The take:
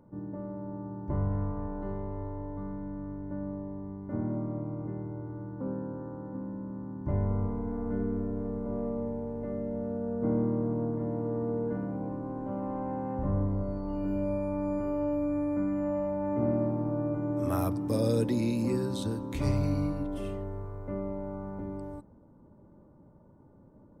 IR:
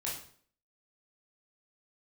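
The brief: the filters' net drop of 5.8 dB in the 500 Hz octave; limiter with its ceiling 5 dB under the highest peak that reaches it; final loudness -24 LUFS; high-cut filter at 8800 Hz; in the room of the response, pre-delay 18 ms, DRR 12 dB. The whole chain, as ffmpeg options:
-filter_complex "[0:a]lowpass=8.8k,equalizer=f=500:t=o:g=-7,alimiter=limit=-23dB:level=0:latency=1,asplit=2[a][b];[1:a]atrim=start_sample=2205,adelay=18[c];[b][c]afir=irnorm=-1:irlink=0,volume=-14.5dB[d];[a][d]amix=inputs=2:normalize=0,volume=11.5dB"

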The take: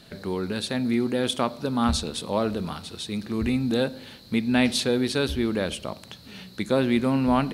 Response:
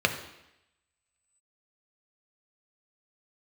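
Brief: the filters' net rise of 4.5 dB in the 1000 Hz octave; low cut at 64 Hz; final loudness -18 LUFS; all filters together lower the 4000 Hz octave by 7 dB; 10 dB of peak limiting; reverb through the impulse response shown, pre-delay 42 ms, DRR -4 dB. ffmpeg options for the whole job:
-filter_complex "[0:a]highpass=64,equalizer=f=1k:t=o:g=6,equalizer=f=4k:t=o:g=-8.5,alimiter=limit=-16dB:level=0:latency=1,asplit=2[a][b];[1:a]atrim=start_sample=2205,adelay=42[c];[b][c]afir=irnorm=-1:irlink=0,volume=-10dB[d];[a][d]amix=inputs=2:normalize=0,volume=6dB"

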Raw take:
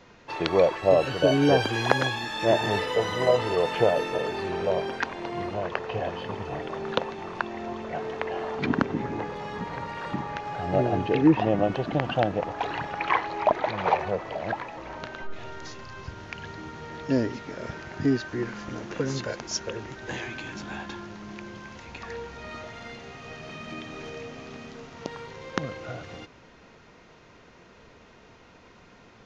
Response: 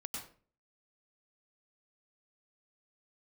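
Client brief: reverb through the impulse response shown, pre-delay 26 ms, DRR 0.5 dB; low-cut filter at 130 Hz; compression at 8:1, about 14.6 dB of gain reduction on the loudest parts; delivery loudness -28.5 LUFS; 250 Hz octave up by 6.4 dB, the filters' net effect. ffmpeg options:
-filter_complex "[0:a]highpass=130,equalizer=f=250:t=o:g=8.5,acompressor=threshold=-23dB:ratio=8,asplit=2[a][b];[1:a]atrim=start_sample=2205,adelay=26[c];[b][c]afir=irnorm=-1:irlink=0,volume=0.5dB[d];[a][d]amix=inputs=2:normalize=0,volume=-0.5dB"

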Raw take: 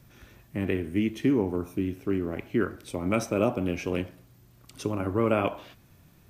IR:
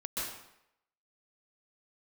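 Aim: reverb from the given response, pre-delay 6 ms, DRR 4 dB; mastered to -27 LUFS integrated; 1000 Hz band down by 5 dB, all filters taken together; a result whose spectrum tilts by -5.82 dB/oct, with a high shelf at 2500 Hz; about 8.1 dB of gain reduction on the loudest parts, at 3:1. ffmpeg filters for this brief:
-filter_complex "[0:a]equalizer=f=1k:t=o:g=-8,highshelf=f=2.5k:g=3.5,acompressor=threshold=-31dB:ratio=3,asplit=2[a][b];[1:a]atrim=start_sample=2205,adelay=6[c];[b][c]afir=irnorm=-1:irlink=0,volume=-8dB[d];[a][d]amix=inputs=2:normalize=0,volume=7.5dB"

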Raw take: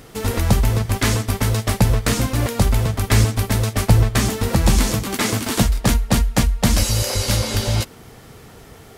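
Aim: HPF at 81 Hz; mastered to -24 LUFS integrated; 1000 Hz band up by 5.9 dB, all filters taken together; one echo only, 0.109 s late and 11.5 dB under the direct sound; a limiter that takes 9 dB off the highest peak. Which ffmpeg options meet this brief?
-af "highpass=81,equalizer=f=1k:t=o:g=7.5,alimiter=limit=-11dB:level=0:latency=1,aecho=1:1:109:0.266,volume=-2.5dB"

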